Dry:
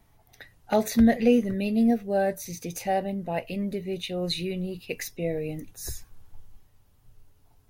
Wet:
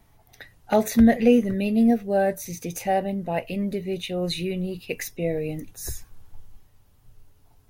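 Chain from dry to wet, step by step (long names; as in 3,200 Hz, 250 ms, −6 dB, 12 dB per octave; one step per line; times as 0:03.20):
dynamic equaliser 4,500 Hz, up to −5 dB, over −51 dBFS, Q 2.5
level +3 dB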